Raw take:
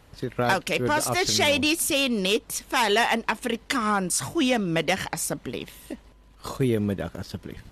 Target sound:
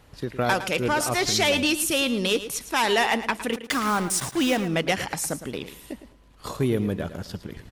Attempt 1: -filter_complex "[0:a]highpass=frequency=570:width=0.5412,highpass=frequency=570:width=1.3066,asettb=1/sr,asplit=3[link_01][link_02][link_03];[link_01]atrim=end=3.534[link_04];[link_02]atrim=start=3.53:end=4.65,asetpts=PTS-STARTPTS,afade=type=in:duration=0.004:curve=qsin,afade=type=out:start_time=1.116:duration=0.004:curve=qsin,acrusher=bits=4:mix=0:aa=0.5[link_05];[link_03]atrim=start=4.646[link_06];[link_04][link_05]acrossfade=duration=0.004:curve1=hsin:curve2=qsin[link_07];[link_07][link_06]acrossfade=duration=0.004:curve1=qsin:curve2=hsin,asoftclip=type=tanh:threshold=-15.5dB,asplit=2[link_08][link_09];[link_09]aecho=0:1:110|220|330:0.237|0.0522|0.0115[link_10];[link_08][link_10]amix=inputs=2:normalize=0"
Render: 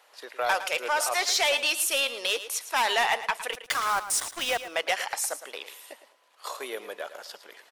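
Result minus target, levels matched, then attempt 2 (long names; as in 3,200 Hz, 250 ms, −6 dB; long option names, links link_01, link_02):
soft clipping: distortion +15 dB; 500 Hz band −3.5 dB
-filter_complex "[0:a]asettb=1/sr,asplit=3[link_01][link_02][link_03];[link_01]atrim=end=3.534[link_04];[link_02]atrim=start=3.53:end=4.65,asetpts=PTS-STARTPTS,afade=type=in:duration=0.004:curve=qsin,afade=type=out:start_time=1.116:duration=0.004:curve=qsin,acrusher=bits=4:mix=0:aa=0.5[link_05];[link_03]atrim=start=4.646[link_06];[link_04][link_05]acrossfade=duration=0.004:curve1=hsin:curve2=qsin[link_07];[link_07][link_06]acrossfade=duration=0.004:curve1=qsin:curve2=hsin,asoftclip=type=tanh:threshold=-7.5dB,asplit=2[link_08][link_09];[link_09]aecho=0:1:110|220|330:0.237|0.0522|0.0115[link_10];[link_08][link_10]amix=inputs=2:normalize=0"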